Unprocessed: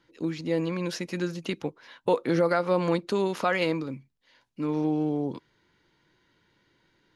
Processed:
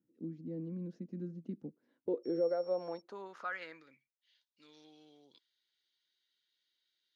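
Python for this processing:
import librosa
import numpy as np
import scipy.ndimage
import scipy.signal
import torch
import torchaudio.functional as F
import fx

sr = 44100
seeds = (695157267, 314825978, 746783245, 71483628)

y = fx.filter_sweep_bandpass(x, sr, from_hz=220.0, to_hz=3600.0, start_s=1.69, end_s=4.44, q=3.0)
y = fx.graphic_eq_15(y, sr, hz=(1000, 2500, 6300), db=(-9, -5, 6))
y = fx.dmg_tone(y, sr, hz=5500.0, level_db=-55.0, at=(2.23, 3.0), fade=0.02)
y = y * librosa.db_to_amplitude(-4.5)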